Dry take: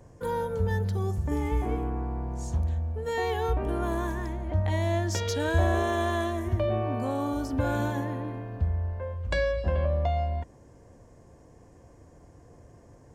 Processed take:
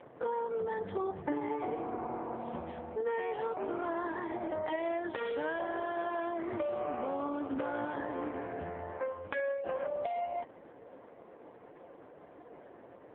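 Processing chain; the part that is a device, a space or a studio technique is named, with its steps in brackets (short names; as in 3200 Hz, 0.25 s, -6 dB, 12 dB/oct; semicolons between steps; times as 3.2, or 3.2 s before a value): voicemail (BPF 360–3200 Hz; compressor 10:1, threshold -39 dBFS, peak gain reduction 14.5 dB; gain +8.5 dB; AMR-NB 4.75 kbps 8000 Hz)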